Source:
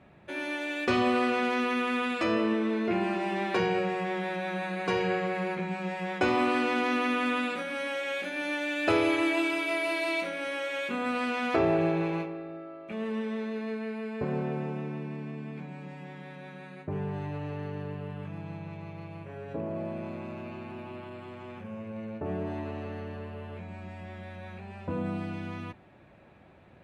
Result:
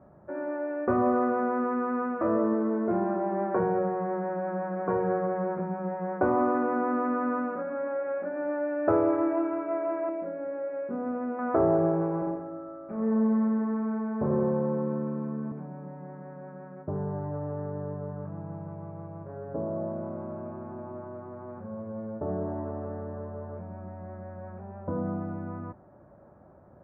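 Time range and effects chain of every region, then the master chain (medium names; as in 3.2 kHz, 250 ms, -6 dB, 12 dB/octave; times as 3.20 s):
10.09–11.39 s: careless resampling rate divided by 6×, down filtered, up hold + peaking EQ 1.2 kHz -10 dB 1.1 oct
12.18–15.52 s: doubling 40 ms -2.5 dB + bit-crushed delay 86 ms, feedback 55%, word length 9-bit, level -4 dB
whole clip: steep low-pass 1.4 kHz 36 dB/octave; peaking EQ 590 Hz +6.5 dB 0.2 oct; trim +1 dB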